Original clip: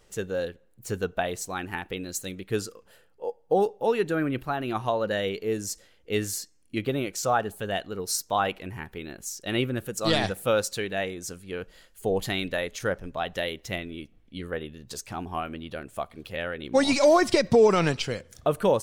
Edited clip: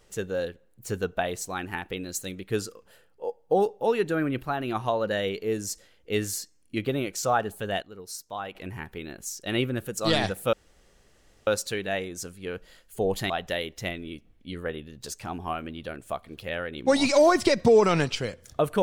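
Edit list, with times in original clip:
7.82–8.55 s: gain -10 dB
10.53 s: insert room tone 0.94 s
12.36–13.17 s: delete

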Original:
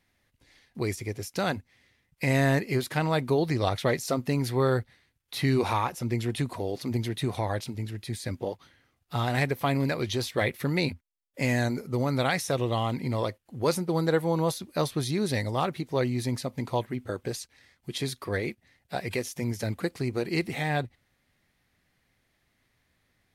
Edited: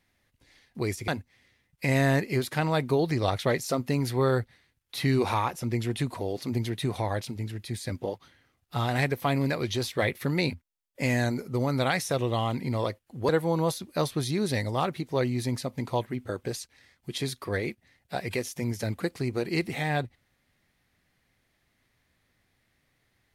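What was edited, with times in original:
1.08–1.47 s: delete
13.68–14.09 s: delete

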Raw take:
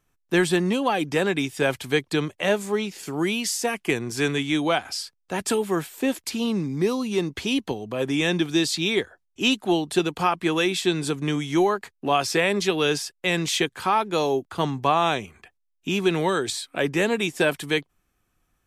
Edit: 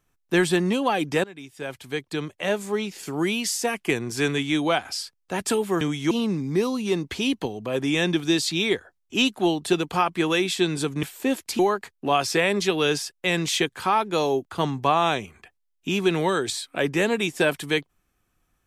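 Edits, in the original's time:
1.24–3.02 s: fade in, from -22 dB
5.81–6.37 s: swap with 11.29–11.59 s

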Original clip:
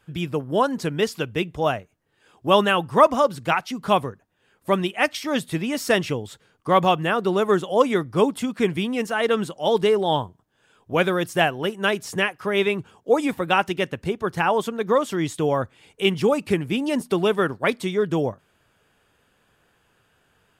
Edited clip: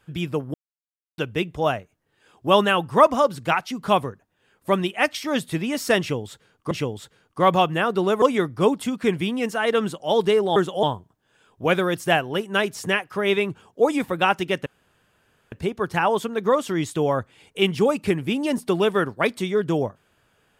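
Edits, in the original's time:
0.54–1.18 s: mute
6.00–6.71 s: loop, 2 plays
7.51–7.78 s: move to 10.12 s
13.95 s: insert room tone 0.86 s

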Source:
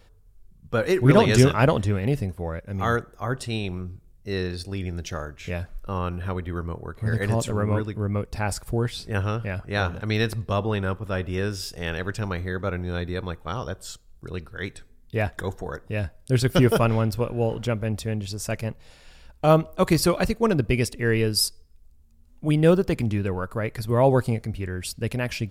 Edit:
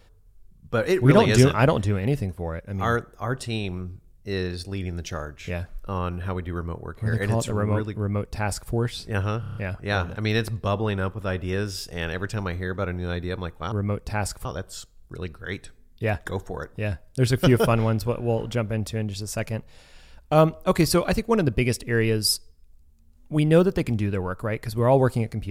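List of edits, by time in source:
7.98–8.71 s: copy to 13.57 s
9.40 s: stutter 0.03 s, 6 plays

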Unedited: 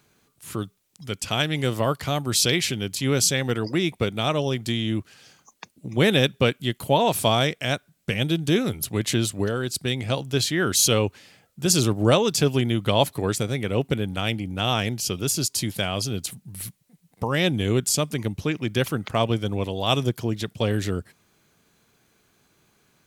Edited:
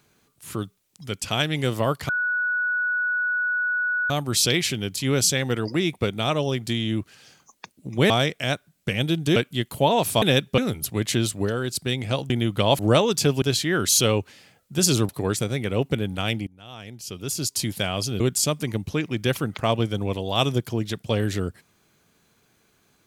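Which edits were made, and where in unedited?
2.09 s: add tone 1.47 kHz -21 dBFS 2.01 s
6.09–6.45 s: swap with 7.31–8.57 s
10.29–11.96 s: swap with 12.59–13.08 s
14.46–15.57 s: fade in quadratic, from -22.5 dB
16.19–17.71 s: delete

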